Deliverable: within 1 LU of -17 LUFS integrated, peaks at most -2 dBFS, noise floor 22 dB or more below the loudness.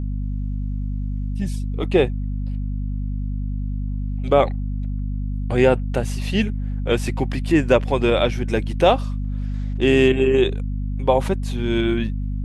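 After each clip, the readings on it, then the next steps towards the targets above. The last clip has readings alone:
hum 50 Hz; harmonics up to 250 Hz; hum level -22 dBFS; loudness -22.0 LUFS; peak -2.5 dBFS; loudness target -17.0 LUFS
-> notches 50/100/150/200/250 Hz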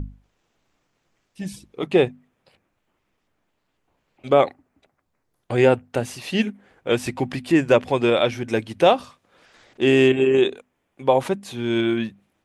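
hum none; loudness -20.5 LUFS; peak -3.5 dBFS; loudness target -17.0 LUFS
-> gain +3.5 dB; limiter -2 dBFS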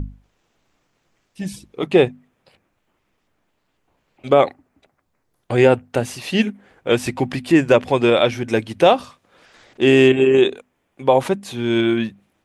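loudness -17.5 LUFS; peak -2.0 dBFS; noise floor -70 dBFS

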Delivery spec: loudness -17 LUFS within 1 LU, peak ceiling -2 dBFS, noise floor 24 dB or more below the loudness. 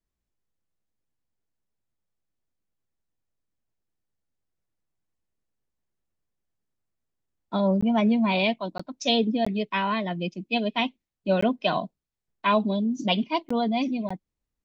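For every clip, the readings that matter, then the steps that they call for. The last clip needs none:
dropouts 6; longest dropout 15 ms; loudness -25.5 LUFS; peak -9.5 dBFS; loudness target -17.0 LUFS
-> interpolate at 7.81/8.78/9.45/11.41/13.49/14.09, 15 ms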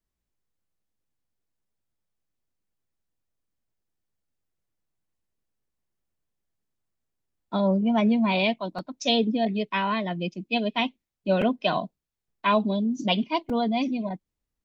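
dropouts 0; loudness -25.5 LUFS; peak -9.5 dBFS; loudness target -17.0 LUFS
-> gain +8.5 dB; limiter -2 dBFS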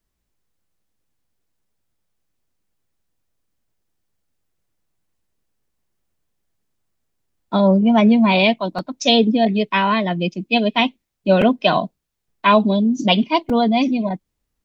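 loudness -17.0 LUFS; peak -2.0 dBFS; noise floor -77 dBFS

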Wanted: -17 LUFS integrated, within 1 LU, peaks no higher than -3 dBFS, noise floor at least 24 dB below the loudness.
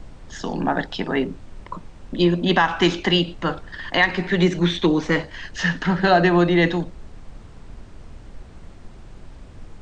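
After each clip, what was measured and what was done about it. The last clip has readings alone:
noise floor -43 dBFS; noise floor target -45 dBFS; loudness -20.5 LUFS; peak -4.5 dBFS; loudness target -17.0 LUFS
-> noise print and reduce 6 dB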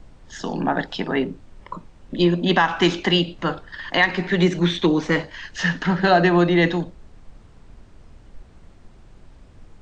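noise floor -49 dBFS; loudness -20.5 LUFS; peak -4.5 dBFS; loudness target -17.0 LUFS
-> gain +3.5 dB; limiter -3 dBFS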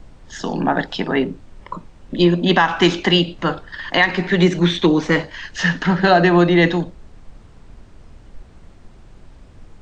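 loudness -17.0 LUFS; peak -3.0 dBFS; noise floor -45 dBFS

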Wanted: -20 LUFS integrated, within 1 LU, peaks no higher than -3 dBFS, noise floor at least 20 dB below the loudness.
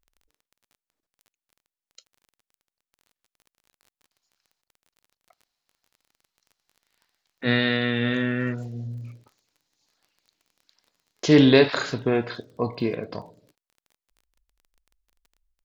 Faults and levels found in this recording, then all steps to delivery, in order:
ticks 23/s; loudness -23.0 LUFS; peak -2.0 dBFS; loudness target -20.0 LUFS
-> de-click; gain +3 dB; limiter -3 dBFS

